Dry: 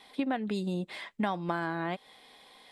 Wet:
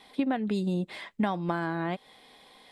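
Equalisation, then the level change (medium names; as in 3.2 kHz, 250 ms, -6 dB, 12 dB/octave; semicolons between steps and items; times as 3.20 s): bass shelf 430 Hz +5 dB; 0.0 dB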